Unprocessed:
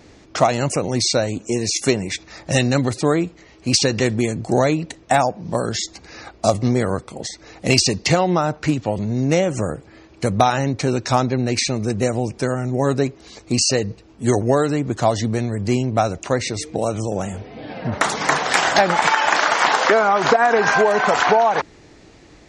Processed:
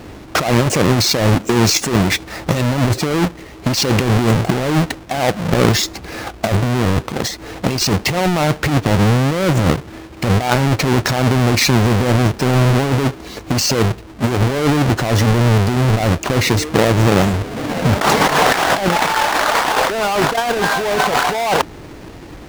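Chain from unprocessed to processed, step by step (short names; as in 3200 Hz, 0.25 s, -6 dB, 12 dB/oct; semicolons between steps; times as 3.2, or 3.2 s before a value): half-waves squared off; negative-ratio compressor -18 dBFS, ratio -1; high shelf 7000 Hz -8 dB; gain +3.5 dB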